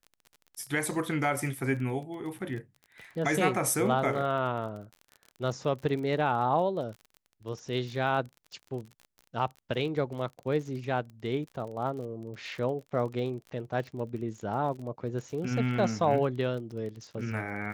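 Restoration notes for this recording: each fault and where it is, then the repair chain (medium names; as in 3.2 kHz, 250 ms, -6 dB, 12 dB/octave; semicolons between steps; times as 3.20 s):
crackle 32 per s -38 dBFS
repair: de-click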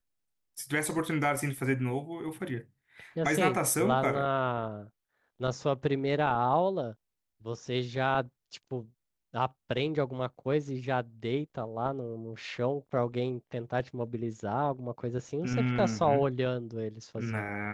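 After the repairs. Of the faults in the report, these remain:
nothing left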